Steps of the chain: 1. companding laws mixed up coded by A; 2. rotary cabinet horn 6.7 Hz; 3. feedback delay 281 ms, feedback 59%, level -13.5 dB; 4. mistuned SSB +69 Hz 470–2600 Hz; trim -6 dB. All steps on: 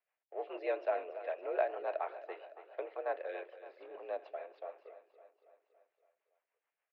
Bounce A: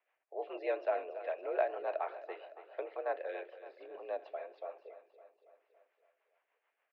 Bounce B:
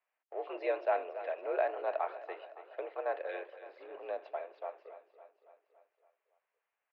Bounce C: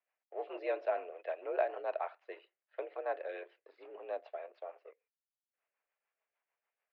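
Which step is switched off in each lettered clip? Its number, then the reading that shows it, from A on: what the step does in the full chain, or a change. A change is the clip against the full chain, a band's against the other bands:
1, distortion -25 dB; 2, crest factor change -2.0 dB; 3, momentary loudness spread change +1 LU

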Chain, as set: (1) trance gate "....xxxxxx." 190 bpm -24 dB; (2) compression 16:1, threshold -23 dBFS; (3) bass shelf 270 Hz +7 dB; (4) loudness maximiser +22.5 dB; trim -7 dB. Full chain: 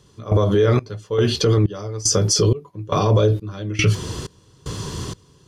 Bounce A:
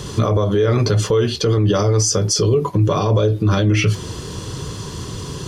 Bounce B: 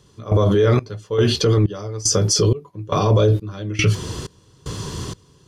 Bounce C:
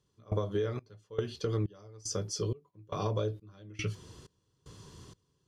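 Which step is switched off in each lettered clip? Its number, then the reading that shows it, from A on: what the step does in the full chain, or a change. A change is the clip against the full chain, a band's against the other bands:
1, 4 kHz band -1.5 dB; 2, mean gain reduction 2.0 dB; 4, crest factor change +7.0 dB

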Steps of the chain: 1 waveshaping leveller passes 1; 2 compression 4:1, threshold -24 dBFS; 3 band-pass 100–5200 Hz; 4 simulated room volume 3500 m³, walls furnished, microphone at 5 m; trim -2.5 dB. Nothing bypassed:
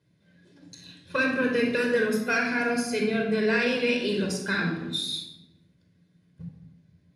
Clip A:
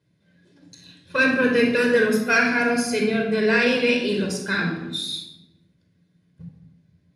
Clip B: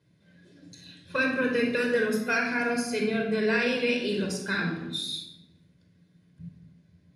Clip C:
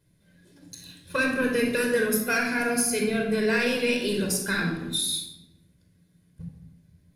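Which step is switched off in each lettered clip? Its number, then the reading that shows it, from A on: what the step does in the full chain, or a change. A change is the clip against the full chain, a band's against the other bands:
2, momentary loudness spread change -3 LU; 1, momentary loudness spread change -4 LU; 3, 8 kHz band +11.0 dB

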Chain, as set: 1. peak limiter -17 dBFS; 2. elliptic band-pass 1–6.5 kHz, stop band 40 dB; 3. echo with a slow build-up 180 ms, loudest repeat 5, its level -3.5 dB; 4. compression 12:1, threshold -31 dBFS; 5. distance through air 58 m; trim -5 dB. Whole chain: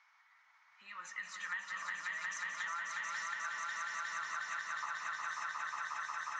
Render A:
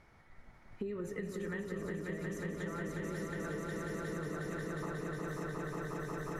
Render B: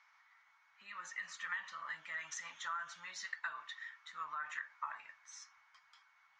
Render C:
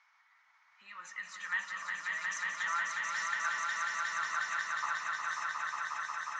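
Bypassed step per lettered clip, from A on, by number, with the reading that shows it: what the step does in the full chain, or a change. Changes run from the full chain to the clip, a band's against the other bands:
2, 500 Hz band +31.5 dB; 3, momentary loudness spread change +7 LU; 4, mean gain reduction 3.5 dB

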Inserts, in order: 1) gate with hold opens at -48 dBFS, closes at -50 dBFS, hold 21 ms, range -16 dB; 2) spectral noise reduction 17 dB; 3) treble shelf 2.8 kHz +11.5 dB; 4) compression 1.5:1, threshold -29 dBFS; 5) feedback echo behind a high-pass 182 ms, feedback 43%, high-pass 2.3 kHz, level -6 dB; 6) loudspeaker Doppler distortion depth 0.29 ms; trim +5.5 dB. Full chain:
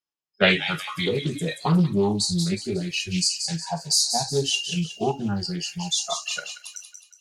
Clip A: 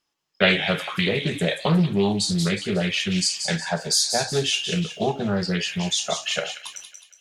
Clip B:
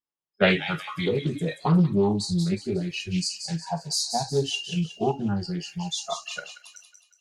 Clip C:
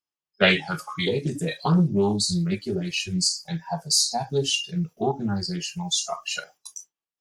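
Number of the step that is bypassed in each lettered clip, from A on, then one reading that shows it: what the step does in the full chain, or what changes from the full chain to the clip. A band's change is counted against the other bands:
2, 8 kHz band -1.5 dB; 3, 8 kHz band -7.5 dB; 5, momentary loudness spread change +1 LU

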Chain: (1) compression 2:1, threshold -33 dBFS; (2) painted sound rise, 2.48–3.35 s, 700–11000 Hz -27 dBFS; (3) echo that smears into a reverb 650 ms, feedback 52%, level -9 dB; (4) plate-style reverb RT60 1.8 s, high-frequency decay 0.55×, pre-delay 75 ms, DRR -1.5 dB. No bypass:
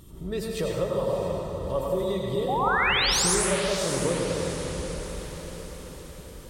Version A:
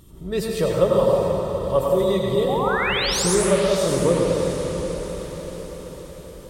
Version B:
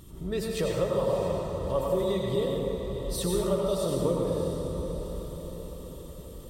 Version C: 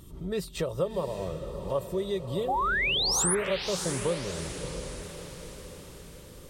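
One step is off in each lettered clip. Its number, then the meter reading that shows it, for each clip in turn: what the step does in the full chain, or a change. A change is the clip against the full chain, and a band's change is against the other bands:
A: 1, mean gain reduction 3.5 dB; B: 2, 2 kHz band -13.0 dB; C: 4, echo-to-direct 2.5 dB to -7.5 dB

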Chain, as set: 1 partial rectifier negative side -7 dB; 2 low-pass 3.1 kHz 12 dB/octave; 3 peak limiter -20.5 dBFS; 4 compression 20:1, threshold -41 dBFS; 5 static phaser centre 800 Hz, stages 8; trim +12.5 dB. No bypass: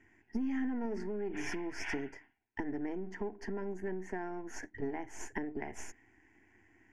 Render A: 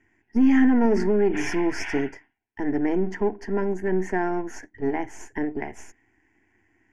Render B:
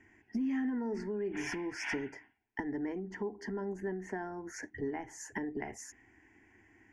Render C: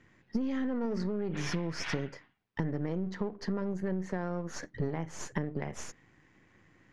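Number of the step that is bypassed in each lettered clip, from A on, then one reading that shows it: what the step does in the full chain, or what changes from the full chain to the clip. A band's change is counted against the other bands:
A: 4, mean gain reduction 12.0 dB; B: 1, distortion -9 dB; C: 5, 125 Hz band +10.5 dB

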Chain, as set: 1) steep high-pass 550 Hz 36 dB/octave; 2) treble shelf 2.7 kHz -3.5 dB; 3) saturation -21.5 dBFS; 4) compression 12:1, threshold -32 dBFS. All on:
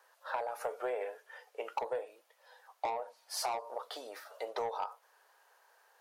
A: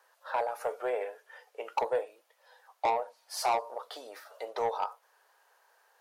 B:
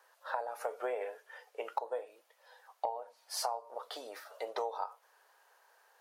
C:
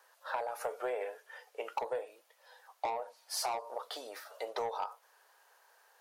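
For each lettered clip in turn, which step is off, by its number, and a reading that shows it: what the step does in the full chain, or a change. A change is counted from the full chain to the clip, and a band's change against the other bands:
4, mean gain reduction 2.5 dB; 3, distortion -8 dB; 2, 8 kHz band +2.0 dB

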